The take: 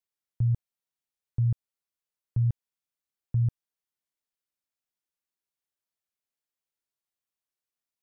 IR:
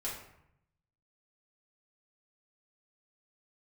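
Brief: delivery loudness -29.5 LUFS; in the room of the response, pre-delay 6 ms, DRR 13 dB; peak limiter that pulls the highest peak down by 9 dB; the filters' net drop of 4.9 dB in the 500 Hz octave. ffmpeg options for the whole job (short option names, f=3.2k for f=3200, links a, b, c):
-filter_complex "[0:a]equalizer=f=500:t=o:g=-7,alimiter=level_in=5dB:limit=-24dB:level=0:latency=1,volume=-5dB,asplit=2[a][b];[1:a]atrim=start_sample=2205,adelay=6[c];[b][c]afir=irnorm=-1:irlink=0,volume=-15dB[d];[a][d]amix=inputs=2:normalize=0,volume=10dB"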